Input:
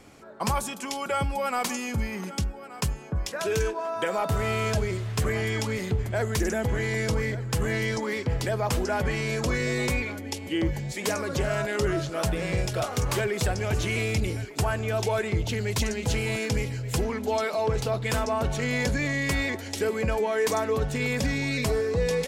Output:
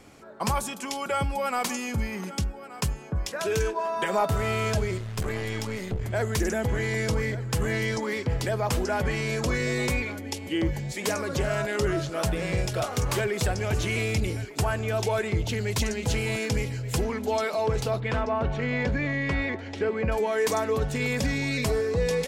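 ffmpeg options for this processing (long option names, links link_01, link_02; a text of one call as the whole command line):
ffmpeg -i in.wav -filter_complex "[0:a]asettb=1/sr,asplit=3[link_01][link_02][link_03];[link_01]atrim=end=3.754[link_04];[link_02]atrim=start=3.75:end=4.26,asetpts=PTS-STARTPTS,afade=type=in:duration=0.004:curve=qsin,afade=type=out:start_time=0.506:duration=0.004:curve=qsin,aecho=1:1:5:0.78,atrim=end_sample=22491[link_05];[link_03]atrim=start=4.256[link_06];[link_04][link_05]acrossfade=duration=0.004:curve1=hsin:curve2=qsin[link_07];[link_07][link_06]acrossfade=duration=0.004:curve1=qsin:curve2=hsin,asettb=1/sr,asplit=3[link_08][link_09][link_10];[link_08]atrim=end=4.984[link_11];[link_09]atrim=start=4.98:end=6.03,asetpts=PTS-STARTPTS,afade=type=in:duration=0.004:curve=qsin,afade=type=out:start_time=1.046:duration=0.004:curve=qsin,aeval=exprs='(tanh(14.1*val(0)+0.65)-tanh(0.65))/14.1':channel_layout=same[link_12];[link_10]atrim=start=6.026[link_13];[link_11][link_12]acrossfade=duration=0.004:curve1=hsin:curve2=qsin[link_14];[link_14][link_13]acrossfade=duration=0.004:curve1=qsin:curve2=hsin,asettb=1/sr,asplit=3[link_15][link_16][link_17];[link_15]atrim=end=18.004[link_18];[link_16]atrim=start=18:end=20.12,asetpts=PTS-STARTPTS,afade=type=in:duration=0.004:curve=qsin,afade=type=out:start_time=2.116:duration=0.004:curve=qsin,lowpass=2700[link_19];[link_17]atrim=start=20.116[link_20];[link_18][link_19]acrossfade=duration=0.004:curve1=hsin:curve2=qsin[link_21];[link_21][link_20]acrossfade=duration=0.004:curve1=qsin:curve2=hsin" out.wav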